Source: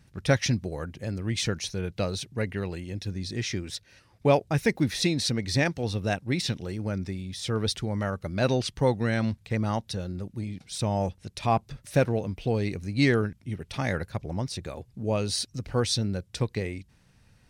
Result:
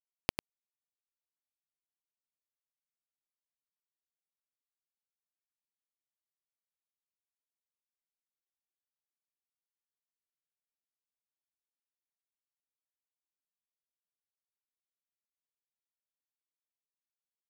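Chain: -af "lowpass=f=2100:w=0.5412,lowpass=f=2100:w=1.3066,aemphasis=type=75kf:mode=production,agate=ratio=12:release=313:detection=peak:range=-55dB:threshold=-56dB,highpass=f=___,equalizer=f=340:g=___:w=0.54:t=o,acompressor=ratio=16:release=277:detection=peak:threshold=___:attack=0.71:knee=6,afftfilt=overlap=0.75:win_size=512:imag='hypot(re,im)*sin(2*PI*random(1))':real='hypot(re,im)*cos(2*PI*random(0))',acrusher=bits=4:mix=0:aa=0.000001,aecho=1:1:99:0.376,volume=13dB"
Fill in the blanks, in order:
42, -6, -31dB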